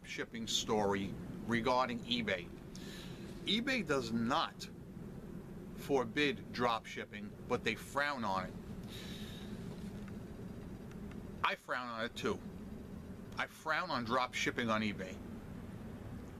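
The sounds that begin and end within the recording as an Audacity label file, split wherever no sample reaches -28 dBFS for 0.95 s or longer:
3.480000	4.460000	sound
5.910000	8.410000	sound
11.440000	12.320000	sound
13.400000	14.900000	sound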